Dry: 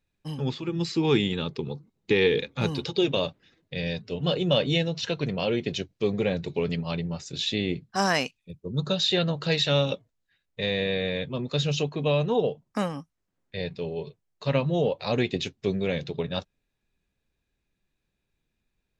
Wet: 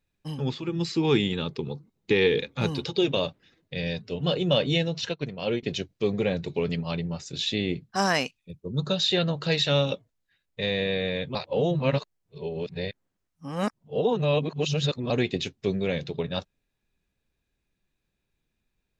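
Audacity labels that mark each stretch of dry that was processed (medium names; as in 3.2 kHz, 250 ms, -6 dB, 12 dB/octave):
5.090000	5.630000	upward expansion 2.5:1, over -38 dBFS
11.350000	15.100000	reverse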